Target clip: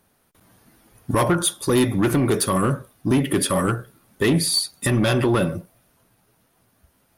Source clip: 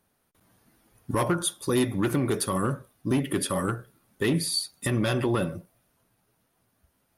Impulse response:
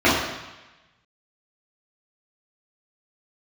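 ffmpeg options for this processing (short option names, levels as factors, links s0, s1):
-af "asoftclip=type=tanh:threshold=0.112,volume=2.51"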